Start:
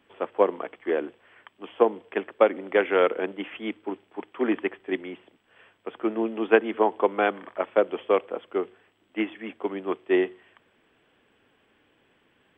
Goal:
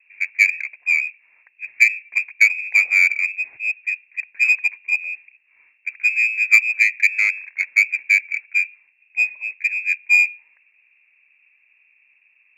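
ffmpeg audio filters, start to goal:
ffmpeg -i in.wav -af "aemphasis=mode=reproduction:type=75kf,lowpass=frequency=2400:width_type=q:width=0.5098,lowpass=frequency=2400:width_type=q:width=0.6013,lowpass=frequency=2400:width_type=q:width=0.9,lowpass=frequency=2400:width_type=q:width=2.563,afreqshift=-2800,aexciter=amount=12.5:drive=7.9:freq=2100,volume=-12.5dB" out.wav

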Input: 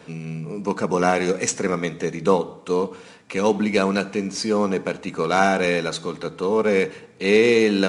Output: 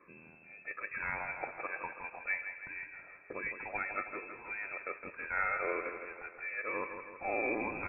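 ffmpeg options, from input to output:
ffmpeg -i in.wav -filter_complex "[0:a]afftfilt=real='re*pow(10,14/40*sin(2*PI*(1.8*log(max(b,1)*sr/1024/100)/log(2)-(1.2)*(pts-256)/sr)))':imag='im*pow(10,14/40*sin(2*PI*(1.8*log(max(b,1)*sr/1024/100)/log(2)-(1.2)*(pts-256)/sr)))':win_size=1024:overlap=0.75,aderivative,asplit=2[link_01][link_02];[link_02]aecho=0:1:242:0.075[link_03];[link_01][link_03]amix=inputs=2:normalize=0,lowpass=frequency=2400:width_type=q:width=0.5098,lowpass=frequency=2400:width_type=q:width=0.6013,lowpass=frequency=2400:width_type=q:width=0.9,lowpass=frequency=2400:width_type=q:width=2.563,afreqshift=-2800,asplit=2[link_04][link_05];[link_05]aecho=0:1:162|324|486|648|810|972|1134:0.376|0.214|0.122|0.0696|0.0397|0.0226|0.0129[link_06];[link_04][link_06]amix=inputs=2:normalize=0" out.wav

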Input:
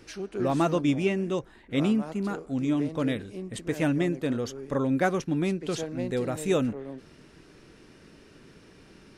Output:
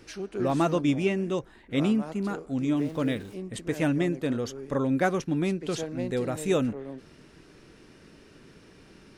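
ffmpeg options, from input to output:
ffmpeg -i in.wav -filter_complex "[0:a]asplit=3[link_01][link_02][link_03];[link_01]afade=type=out:start_time=2.75:duration=0.02[link_04];[link_02]aeval=exprs='val(0)*gte(abs(val(0)),0.00422)':channel_layout=same,afade=type=in:start_time=2.75:duration=0.02,afade=type=out:start_time=3.33:duration=0.02[link_05];[link_03]afade=type=in:start_time=3.33:duration=0.02[link_06];[link_04][link_05][link_06]amix=inputs=3:normalize=0" out.wav

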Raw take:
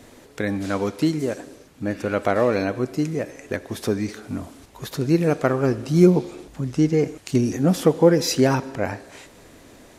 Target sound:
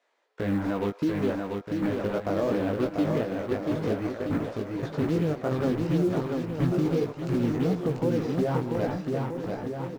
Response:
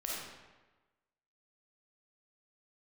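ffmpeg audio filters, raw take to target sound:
-filter_complex "[0:a]acrossover=split=530|1300[link_01][link_02][link_03];[link_01]acrusher=bits=4:mix=0:aa=0.5[link_04];[link_03]acompressor=threshold=-46dB:ratio=6[link_05];[link_04][link_02][link_05]amix=inputs=3:normalize=0,flanger=delay=16:depth=4.2:speed=2.7,agate=range=-19dB:threshold=-48dB:ratio=16:detection=peak,adynamicsmooth=sensitivity=4:basefreq=4000,acrusher=bits=9:mode=log:mix=0:aa=0.000001,alimiter=limit=-22dB:level=0:latency=1:release=319,asplit=2[link_06][link_07];[link_07]aecho=0:1:690|1276|1775|2199|2559:0.631|0.398|0.251|0.158|0.1[link_08];[link_06][link_08]amix=inputs=2:normalize=0,volume=4dB"

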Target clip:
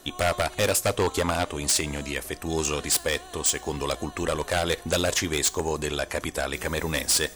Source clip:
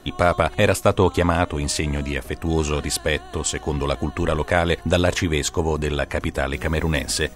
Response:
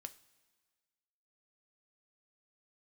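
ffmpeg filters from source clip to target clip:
-filter_complex "[0:a]bass=frequency=250:gain=-7,treble=frequency=4000:gain=10,aeval=exprs='0.266*(abs(mod(val(0)/0.266+3,4)-2)-1)':channel_layout=same,asplit=2[link_01][link_02];[1:a]atrim=start_sample=2205[link_03];[link_02][link_03]afir=irnorm=-1:irlink=0,volume=0.5dB[link_04];[link_01][link_04]amix=inputs=2:normalize=0,volume=-7.5dB"

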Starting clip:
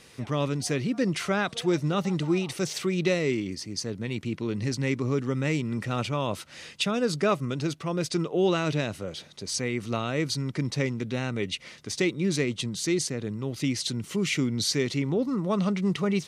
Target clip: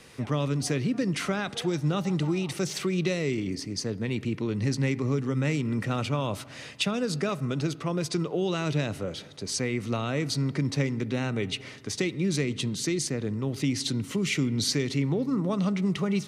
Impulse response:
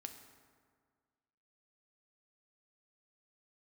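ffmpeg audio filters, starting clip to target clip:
-filter_complex "[0:a]acrossover=split=160|3000[link_01][link_02][link_03];[link_02]acompressor=threshold=-29dB:ratio=6[link_04];[link_01][link_04][link_03]amix=inputs=3:normalize=0,asplit=2[link_05][link_06];[1:a]atrim=start_sample=2205,lowpass=3000[link_07];[link_06][link_07]afir=irnorm=-1:irlink=0,volume=-3dB[link_08];[link_05][link_08]amix=inputs=2:normalize=0"

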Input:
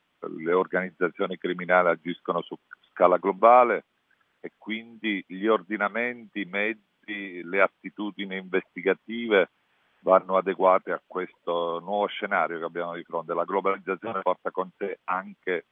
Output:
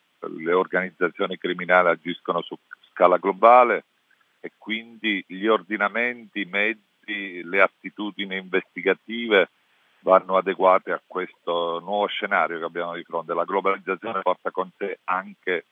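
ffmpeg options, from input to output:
ffmpeg -i in.wav -af "highpass=130,highshelf=frequency=2400:gain=8,volume=2dB" out.wav

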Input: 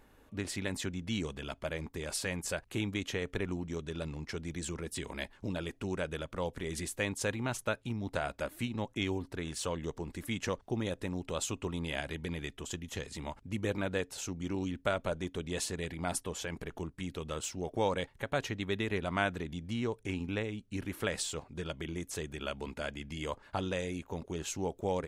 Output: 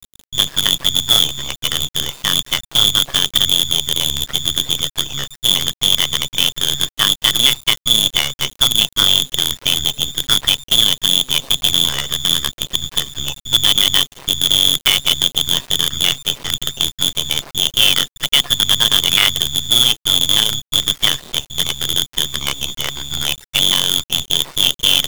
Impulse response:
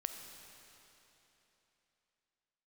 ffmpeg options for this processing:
-af "afftfilt=real='re*gte(hypot(re,im),0.00316)':imag='im*gte(hypot(re,im),0.00316)':win_size=1024:overlap=0.75,lowshelf=frequency=370:gain=10,lowpass=frequency=3100:width_type=q:width=0.5098,lowpass=frequency=3100:width_type=q:width=0.6013,lowpass=frequency=3100:width_type=q:width=0.9,lowpass=frequency=3100:width_type=q:width=2.563,afreqshift=-3600,acrusher=bits=5:dc=4:mix=0:aa=0.000001,apsyclip=18dB,tremolo=f=140:d=0.71,volume=-1dB"

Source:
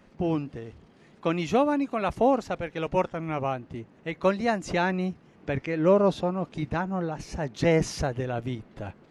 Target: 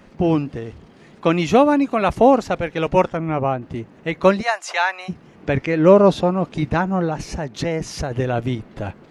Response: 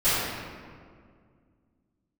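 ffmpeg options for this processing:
-filter_complex "[0:a]asettb=1/sr,asplit=3[link_01][link_02][link_03];[link_01]atrim=end=3.174[link_04];[link_02]atrim=start=3.17:end=3.62,asetpts=PTS-STARTPTS,afade=type=in:duration=0.004:curve=qsin,afade=type=out:start_time=0.446:duration=0.004:curve=qsin,highshelf=frequency=2500:gain=-12[link_05];[link_03]atrim=start=3.616[link_06];[link_04][link_05]acrossfade=duration=0.004:curve1=hsin:curve2=qsin[link_07];[link_07][link_06]acrossfade=duration=0.004:curve1=qsin:curve2=hsin,asplit=3[link_08][link_09][link_10];[link_08]afade=type=out:start_time=4.41:duration=0.02[link_11];[link_09]highpass=frequency=740:width=0.5412,highpass=frequency=740:width=1.3066,afade=type=in:start_time=4.41:duration=0.02,afade=type=out:start_time=5.08:duration=0.02[link_12];[link_10]afade=type=in:start_time=5.08:duration=0.02[link_13];[link_11][link_12][link_13]amix=inputs=3:normalize=0,asplit=3[link_14][link_15][link_16];[link_14]afade=type=out:start_time=7.31:duration=0.02[link_17];[link_15]acompressor=threshold=-34dB:ratio=2.5,afade=type=in:start_time=7.31:duration=0.02,afade=type=out:start_time=8.1:duration=0.02[link_18];[link_16]afade=type=in:start_time=8.1:duration=0.02[link_19];[link_17][link_18][link_19]amix=inputs=3:normalize=0,volume=9dB"

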